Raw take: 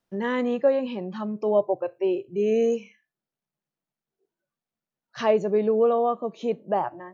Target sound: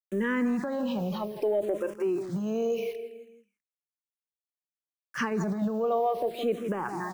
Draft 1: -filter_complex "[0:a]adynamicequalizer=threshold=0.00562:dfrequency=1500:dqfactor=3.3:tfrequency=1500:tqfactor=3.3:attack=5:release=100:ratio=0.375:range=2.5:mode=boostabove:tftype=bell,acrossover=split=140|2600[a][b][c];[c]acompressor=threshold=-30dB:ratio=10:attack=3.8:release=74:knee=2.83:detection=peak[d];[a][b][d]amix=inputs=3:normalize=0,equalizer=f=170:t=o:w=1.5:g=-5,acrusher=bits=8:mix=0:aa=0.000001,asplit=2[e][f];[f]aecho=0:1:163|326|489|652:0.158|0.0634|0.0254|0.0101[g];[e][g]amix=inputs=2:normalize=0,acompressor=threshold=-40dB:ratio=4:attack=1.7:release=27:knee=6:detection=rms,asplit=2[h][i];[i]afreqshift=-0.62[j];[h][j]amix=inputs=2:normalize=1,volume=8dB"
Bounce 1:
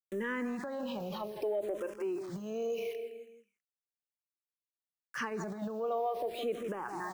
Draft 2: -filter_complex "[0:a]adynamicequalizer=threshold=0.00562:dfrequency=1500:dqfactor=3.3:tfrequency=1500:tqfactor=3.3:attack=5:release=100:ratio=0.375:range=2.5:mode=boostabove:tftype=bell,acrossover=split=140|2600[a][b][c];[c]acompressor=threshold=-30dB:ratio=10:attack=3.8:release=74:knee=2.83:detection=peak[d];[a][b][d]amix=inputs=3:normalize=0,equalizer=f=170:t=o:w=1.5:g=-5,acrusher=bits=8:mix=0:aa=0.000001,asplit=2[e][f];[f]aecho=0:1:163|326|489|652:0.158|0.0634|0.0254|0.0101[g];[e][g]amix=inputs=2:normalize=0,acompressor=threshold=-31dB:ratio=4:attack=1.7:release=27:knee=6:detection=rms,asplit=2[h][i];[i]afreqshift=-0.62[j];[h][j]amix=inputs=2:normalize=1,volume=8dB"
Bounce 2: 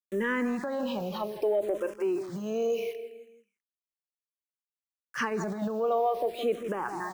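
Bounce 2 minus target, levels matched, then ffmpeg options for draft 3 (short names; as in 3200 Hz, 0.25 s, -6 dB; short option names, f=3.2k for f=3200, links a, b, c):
125 Hz band -4.5 dB
-filter_complex "[0:a]adynamicequalizer=threshold=0.00562:dfrequency=1500:dqfactor=3.3:tfrequency=1500:tqfactor=3.3:attack=5:release=100:ratio=0.375:range=2.5:mode=boostabove:tftype=bell,acrossover=split=140|2600[a][b][c];[c]acompressor=threshold=-30dB:ratio=10:attack=3.8:release=74:knee=2.83:detection=peak[d];[a][b][d]amix=inputs=3:normalize=0,equalizer=f=170:t=o:w=1.5:g=3,acrusher=bits=8:mix=0:aa=0.000001,asplit=2[e][f];[f]aecho=0:1:163|326|489|652:0.158|0.0634|0.0254|0.0101[g];[e][g]amix=inputs=2:normalize=0,acompressor=threshold=-31dB:ratio=4:attack=1.7:release=27:knee=6:detection=rms,asplit=2[h][i];[i]afreqshift=-0.62[j];[h][j]amix=inputs=2:normalize=1,volume=8dB"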